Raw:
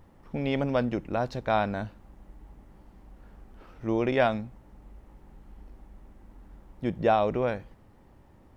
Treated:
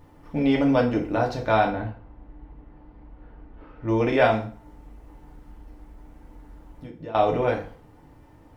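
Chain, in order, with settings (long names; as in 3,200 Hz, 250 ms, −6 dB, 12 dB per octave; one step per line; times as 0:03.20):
0:01.68–0:03.88: high-frequency loss of the air 350 metres
0:04.44–0:07.15: downward compressor 5 to 1, threshold −43 dBFS, peak gain reduction 22 dB
feedback delay network reverb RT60 0.44 s, low-frequency decay 0.9×, high-frequency decay 0.85×, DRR −1.5 dB
level +1.5 dB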